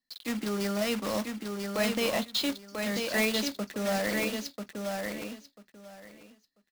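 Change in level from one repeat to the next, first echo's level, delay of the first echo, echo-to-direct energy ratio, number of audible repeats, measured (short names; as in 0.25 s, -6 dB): -15.0 dB, -4.5 dB, 0.991 s, -4.5 dB, 3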